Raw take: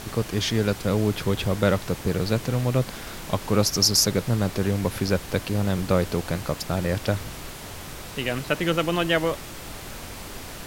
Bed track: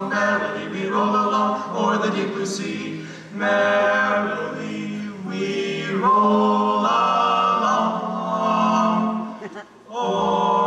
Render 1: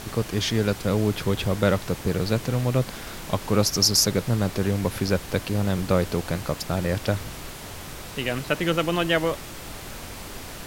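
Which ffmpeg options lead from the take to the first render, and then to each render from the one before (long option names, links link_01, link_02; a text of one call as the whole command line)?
ffmpeg -i in.wav -af anull out.wav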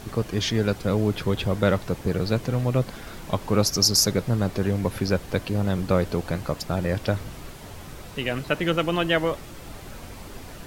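ffmpeg -i in.wav -af "afftdn=noise_reduction=7:noise_floor=-38" out.wav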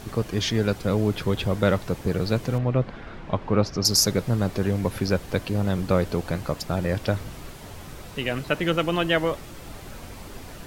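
ffmpeg -i in.wav -filter_complex "[0:a]asettb=1/sr,asplit=3[link_01][link_02][link_03];[link_01]atrim=end=2.584[link_04];[link_02]atrim=start=2.58:end=3.85,asetpts=PTS-STARTPTS,afade=type=in:duration=0.004:curve=qsin,afade=type=out:start_time=1.266:duration=0.004:curve=qsin,lowpass=2600[link_05];[link_03]atrim=start=3.846[link_06];[link_04][link_05]acrossfade=duration=0.004:curve1=hsin:curve2=qsin[link_07];[link_07][link_06]acrossfade=duration=0.004:curve1=qsin:curve2=hsin" out.wav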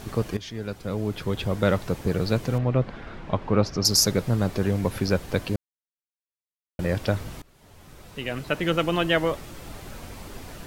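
ffmpeg -i in.wav -filter_complex "[0:a]asplit=5[link_01][link_02][link_03][link_04][link_05];[link_01]atrim=end=0.37,asetpts=PTS-STARTPTS,afade=type=out:start_time=0.366:duration=0.004:curve=hsin:silence=0.177828[link_06];[link_02]atrim=start=0.37:end=5.56,asetpts=PTS-STARTPTS,afade=type=in:duration=1.47:silence=0.177828,afade=type=out:start_time=5.186:duration=0.004:curve=hsin[link_07];[link_03]atrim=start=5.56:end=6.79,asetpts=PTS-STARTPTS,volume=0[link_08];[link_04]atrim=start=6.79:end=7.42,asetpts=PTS-STARTPTS,afade=type=in:duration=0.004:curve=hsin,afade=type=out:start_time=0.626:duration=0.004:curve=hsin:silence=0.0749894[link_09];[link_05]atrim=start=7.42,asetpts=PTS-STARTPTS,afade=type=in:duration=1.37:silence=0.0749894[link_10];[link_06][link_07][link_08][link_09][link_10]concat=n=5:v=0:a=1" out.wav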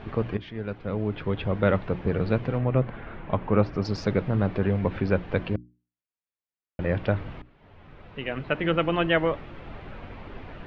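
ffmpeg -i in.wav -af "lowpass=frequency=2900:width=0.5412,lowpass=frequency=2900:width=1.3066,bandreject=frequency=60:width_type=h:width=6,bandreject=frequency=120:width_type=h:width=6,bandreject=frequency=180:width_type=h:width=6,bandreject=frequency=240:width_type=h:width=6,bandreject=frequency=300:width_type=h:width=6,bandreject=frequency=360:width_type=h:width=6" out.wav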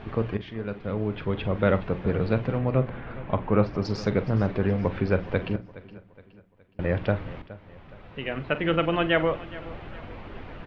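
ffmpeg -i in.wav -filter_complex "[0:a]asplit=2[link_01][link_02];[link_02]adelay=44,volume=-13.5dB[link_03];[link_01][link_03]amix=inputs=2:normalize=0,aecho=1:1:418|836|1254|1672:0.126|0.0541|0.0233|0.01" out.wav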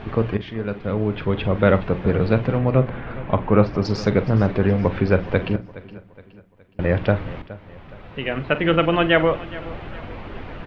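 ffmpeg -i in.wav -af "volume=6dB" out.wav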